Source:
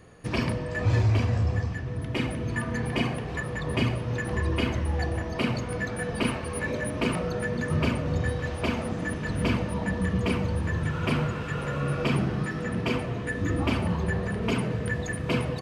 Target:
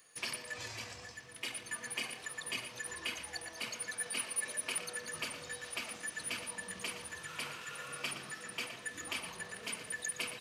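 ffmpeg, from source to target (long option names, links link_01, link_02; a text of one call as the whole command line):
ffmpeg -i in.wav -filter_complex "[0:a]aderivative,atempo=1.5,asplit=2[link_01][link_02];[link_02]adelay=116.6,volume=-10dB,highshelf=frequency=4000:gain=-2.62[link_03];[link_01][link_03]amix=inputs=2:normalize=0,volume=4dB" out.wav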